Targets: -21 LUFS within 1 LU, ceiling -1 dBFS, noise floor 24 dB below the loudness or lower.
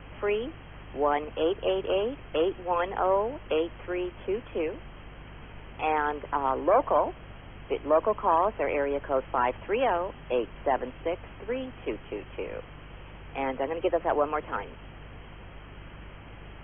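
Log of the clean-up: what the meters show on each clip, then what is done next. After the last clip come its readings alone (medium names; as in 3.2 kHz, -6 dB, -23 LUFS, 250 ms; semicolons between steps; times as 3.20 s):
hum 50 Hz; highest harmonic 150 Hz; hum level -45 dBFS; noise floor -46 dBFS; noise floor target -53 dBFS; loudness -29.0 LUFS; peak level -12.0 dBFS; loudness target -21.0 LUFS
-> de-hum 50 Hz, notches 3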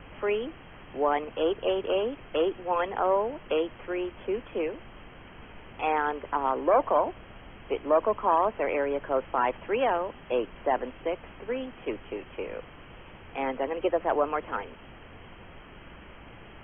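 hum not found; noise floor -49 dBFS; noise floor target -53 dBFS
-> noise print and reduce 6 dB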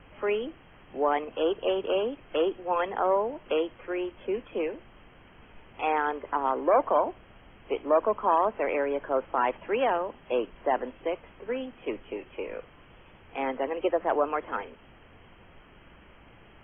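noise floor -54 dBFS; loudness -29.0 LUFS; peak level -12.0 dBFS; loudness target -21.0 LUFS
-> trim +8 dB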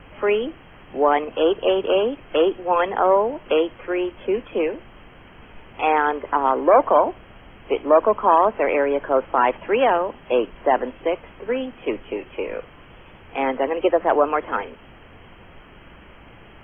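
loudness -21.0 LUFS; peak level -4.0 dBFS; noise floor -46 dBFS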